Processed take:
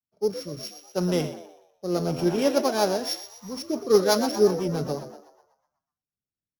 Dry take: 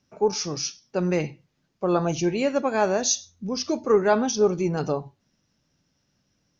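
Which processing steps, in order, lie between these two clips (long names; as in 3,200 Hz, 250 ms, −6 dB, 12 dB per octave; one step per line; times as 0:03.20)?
samples sorted by size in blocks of 8 samples
high-shelf EQ 5,200 Hz −5.5 dB
on a send: echo with shifted repeats 123 ms, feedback 63%, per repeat +77 Hz, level −10 dB
on the sum: rotating-speaker cabinet horn 0.7 Hz, later 8 Hz, at 0:03.24
multiband upward and downward expander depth 70%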